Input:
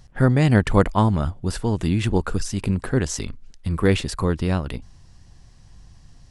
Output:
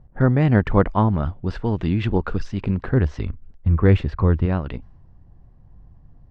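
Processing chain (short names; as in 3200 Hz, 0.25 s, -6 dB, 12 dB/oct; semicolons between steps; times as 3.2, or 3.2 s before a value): low-pass opened by the level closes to 750 Hz, open at -13.5 dBFS; 2.88–4.46 bell 78 Hz +9 dB 1.3 oct; treble ducked by the level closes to 2000 Hz, closed at -15 dBFS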